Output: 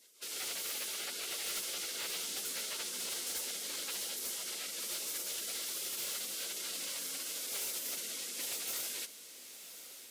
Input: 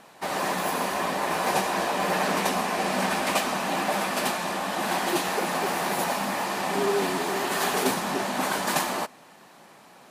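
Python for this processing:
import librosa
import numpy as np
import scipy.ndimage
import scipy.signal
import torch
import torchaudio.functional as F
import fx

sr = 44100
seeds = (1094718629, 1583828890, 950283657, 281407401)

y = scipy.signal.sosfilt(scipy.signal.butter(2, 1100.0, 'highpass', fs=sr, output='sos'), x)
y = fx.spec_gate(y, sr, threshold_db=-15, keep='weak')
y = np.clip(y, -10.0 ** (-34.5 / 20.0), 10.0 ** (-34.5 / 20.0))
y = fx.echo_diffused(y, sr, ms=1113, feedback_pct=40, wet_db=-12.0)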